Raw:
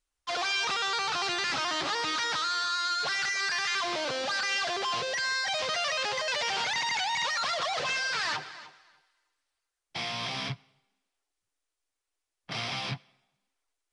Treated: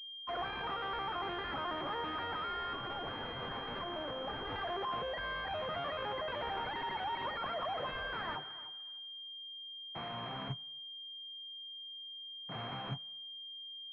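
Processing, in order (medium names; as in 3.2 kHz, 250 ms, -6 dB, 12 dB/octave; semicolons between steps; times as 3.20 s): 2.73–4.56 s: self-modulated delay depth 0.25 ms; class-D stage that switches slowly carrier 3.2 kHz; trim -4.5 dB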